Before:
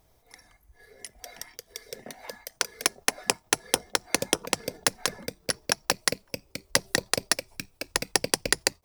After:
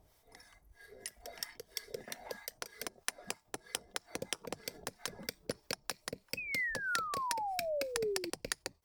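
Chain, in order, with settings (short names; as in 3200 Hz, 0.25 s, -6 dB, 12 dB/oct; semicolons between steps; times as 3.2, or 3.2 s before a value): compressor 8:1, threshold -30 dBFS, peak gain reduction 14 dB; added harmonics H 2 -16 dB, 5 -11 dB, 7 -29 dB, 8 -42 dB, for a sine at -7.5 dBFS; pitch shift -0.5 st; painted sound fall, 6.37–8.3, 330–2600 Hz -27 dBFS; harmonic tremolo 3.1 Hz, depth 70%, crossover 910 Hz; gain -6.5 dB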